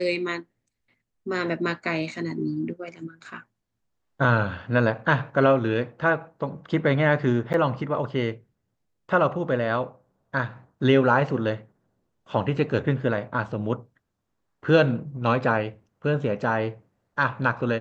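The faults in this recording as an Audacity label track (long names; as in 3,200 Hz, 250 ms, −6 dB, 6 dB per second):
7.530000	7.540000	drop-out 9.7 ms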